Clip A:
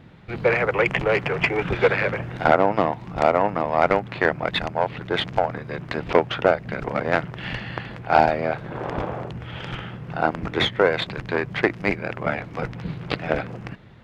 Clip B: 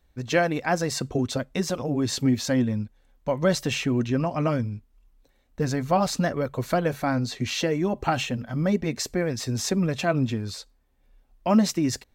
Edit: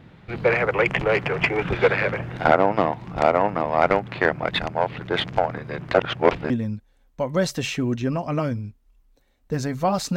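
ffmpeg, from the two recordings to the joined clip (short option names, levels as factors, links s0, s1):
-filter_complex "[0:a]apad=whole_dur=10.16,atrim=end=10.16,asplit=2[s0][s1];[s0]atrim=end=5.942[s2];[s1]atrim=start=5.938:end=6.502,asetpts=PTS-STARTPTS,areverse[s3];[1:a]atrim=start=2.578:end=6.24[s4];[s2][s3]acrossfade=d=0.004:c1=hsin:c2=hsin[s5];[s5][s4]acrossfade=d=0.004:c1=hsin:c2=hsin"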